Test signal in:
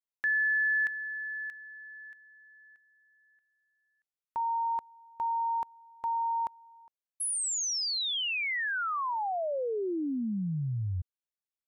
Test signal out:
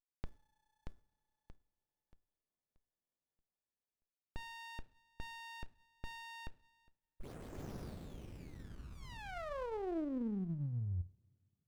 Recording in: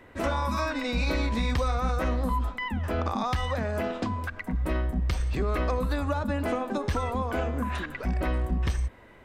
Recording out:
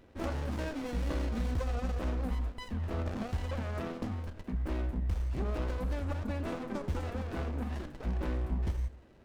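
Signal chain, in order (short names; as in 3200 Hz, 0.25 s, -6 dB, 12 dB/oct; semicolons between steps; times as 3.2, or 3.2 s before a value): dynamic EQ 6200 Hz, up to +6 dB, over -57 dBFS, Q 2.5; two-slope reverb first 0.47 s, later 2.6 s, from -26 dB, DRR 12 dB; running maximum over 33 samples; gain -6 dB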